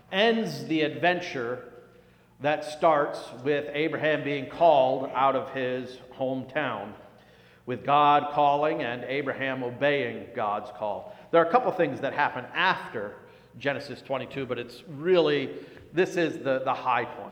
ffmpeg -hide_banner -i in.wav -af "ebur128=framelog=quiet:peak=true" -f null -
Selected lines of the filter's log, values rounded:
Integrated loudness:
  I:         -26.6 LUFS
  Threshold: -37.1 LUFS
Loudness range:
  LRA:         3.5 LU
  Threshold: -47.1 LUFS
  LRA low:   -29.1 LUFS
  LRA high:  -25.6 LUFS
True peak:
  Peak:       -6.8 dBFS